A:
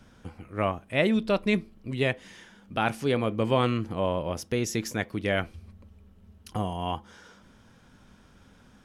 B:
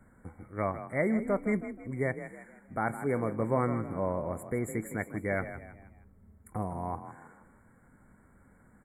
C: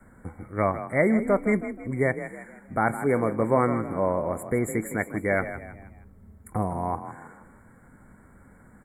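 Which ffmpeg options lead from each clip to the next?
ffmpeg -i in.wav -filter_complex "[0:a]afftfilt=real='re*(1-between(b*sr/4096,2300,7000))':imag='im*(1-between(b*sr/4096,2300,7000))':win_size=4096:overlap=0.75,asplit=2[link_01][link_02];[link_02]asplit=4[link_03][link_04][link_05][link_06];[link_03]adelay=159,afreqshift=33,volume=-11.5dB[link_07];[link_04]adelay=318,afreqshift=66,volume=-19.7dB[link_08];[link_05]adelay=477,afreqshift=99,volume=-27.9dB[link_09];[link_06]adelay=636,afreqshift=132,volume=-36dB[link_10];[link_07][link_08][link_09][link_10]amix=inputs=4:normalize=0[link_11];[link_01][link_11]amix=inputs=2:normalize=0,volume=-4.5dB" out.wav
ffmpeg -i in.wav -af "adynamicequalizer=threshold=0.00501:dfrequency=110:dqfactor=0.8:tfrequency=110:tqfactor=0.8:attack=5:release=100:ratio=0.375:range=3:mode=cutabove:tftype=bell,volume=7.5dB" out.wav

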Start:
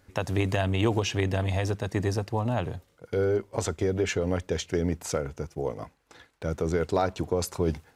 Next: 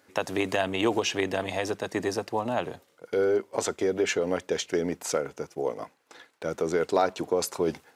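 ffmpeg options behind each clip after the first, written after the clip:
ffmpeg -i in.wav -af "highpass=280,volume=2.5dB" out.wav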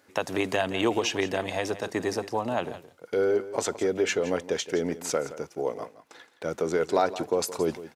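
ffmpeg -i in.wav -af "aecho=1:1:169:0.178" out.wav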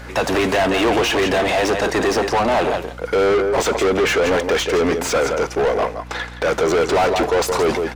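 ffmpeg -i in.wav -filter_complex "[0:a]asplit=2[link_01][link_02];[link_02]highpass=frequency=720:poles=1,volume=34dB,asoftclip=type=tanh:threshold=-9dB[link_03];[link_01][link_03]amix=inputs=2:normalize=0,lowpass=frequency=2400:poles=1,volume=-6dB,aeval=exprs='val(0)+0.0178*(sin(2*PI*60*n/s)+sin(2*PI*2*60*n/s)/2+sin(2*PI*3*60*n/s)/3+sin(2*PI*4*60*n/s)/4+sin(2*PI*5*60*n/s)/5)':channel_layout=same" out.wav

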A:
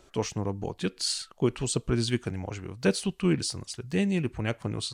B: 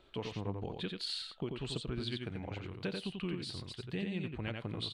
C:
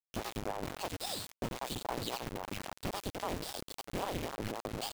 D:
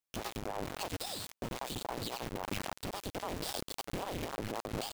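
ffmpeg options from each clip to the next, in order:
ffmpeg -i in.wav -filter_complex "[0:a]highshelf=frequency=4800:width_type=q:width=3:gain=-9,acompressor=threshold=-28dB:ratio=6,asplit=2[link_01][link_02];[link_02]aecho=0:1:89:0.596[link_03];[link_01][link_03]amix=inputs=2:normalize=0,volume=-7dB" out.wav
ffmpeg -i in.wav -af "acrusher=bits=4:dc=4:mix=0:aa=0.000001,aeval=exprs='val(0)*sin(2*PI*460*n/s+460*0.8/3.7*sin(2*PI*3.7*n/s))':channel_layout=same,volume=5.5dB" out.wav
ffmpeg -i in.wav -af "alimiter=level_in=6.5dB:limit=-24dB:level=0:latency=1:release=122,volume=-6.5dB,volume=4dB" out.wav

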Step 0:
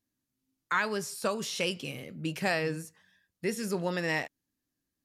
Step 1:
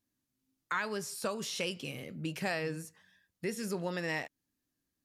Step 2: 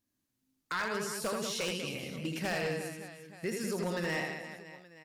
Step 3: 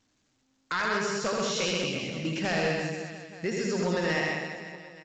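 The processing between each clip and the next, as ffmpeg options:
ffmpeg -i in.wav -af "acompressor=threshold=-39dB:ratio=1.5" out.wav
ffmpeg -i in.wav -af "aecho=1:1:80|192|348.8|568.3|875.6:0.631|0.398|0.251|0.158|0.1,aeval=exprs='0.0501*(abs(mod(val(0)/0.0501+3,4)-2)-1)':channel_layout=same" out.wav
ffmpeg -i in.wav -filter_complex "[0:a]asplit=2[link_01][link_02];[link_02]aecho=0:1:132:0.708[link_03];[link_01][link_03]amix=inputs=2:normalize=0,volume=4.5dB" -ar 16000 -c:a pcm_alaw out.wav

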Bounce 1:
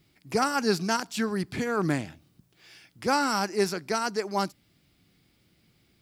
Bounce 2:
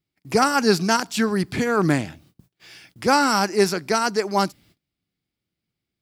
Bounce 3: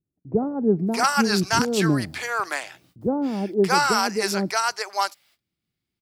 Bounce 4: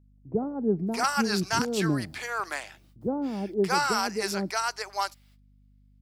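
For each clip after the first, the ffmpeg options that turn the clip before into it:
ffmpeg -i in.wav -af "agate=range=-25dB:threshold=-59dB:ratio=16:detection=peak,volume=7dB" out.wav
ffmpeg -i in.wav -filter_complex "[0:a]acrossover=split=600[link_01][link_02];[link_02]adelay=620[link_03];[link_01][link_03]amix=inputs=2:normalize=0" out.wav
ffmpeg -i in.wav -af "aeval=exprs='val(0)+0.00251*(sin(2*PI*50*n/s)+sin(2*PI*2*50*n/s)/2+sin(2*PI*3*50*n/s)/3+sin(2*PI*4*50*n/s)/4+sin(2*PI*5*50*n/s)/5)':channel_layout=same,volume=-5.5dB" out.wav

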